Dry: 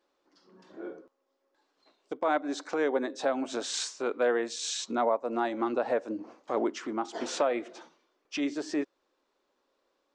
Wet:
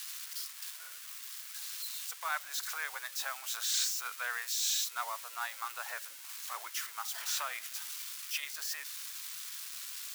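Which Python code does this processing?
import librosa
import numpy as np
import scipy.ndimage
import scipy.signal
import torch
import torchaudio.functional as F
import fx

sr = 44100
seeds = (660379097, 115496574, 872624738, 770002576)

y = x + 0.5 * 10.0 ** (-30.5 / 20.0) * np.diff(np.sign(x), prepend=np.sign(x[:1]))
y = scipy.signal.sosfilt(scipy.signal.butter(4, 1200.0, 'highpass', fs=sr, output='sos'), y)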